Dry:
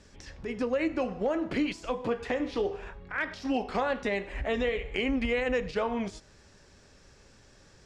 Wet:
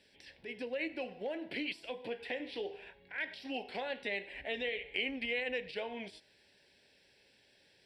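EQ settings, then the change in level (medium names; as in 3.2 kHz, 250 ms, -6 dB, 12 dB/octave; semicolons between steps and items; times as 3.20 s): high-pass 1.1 kHz 6 dB/octave; static phaser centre 2.9 kHz, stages 4; 0.0 dB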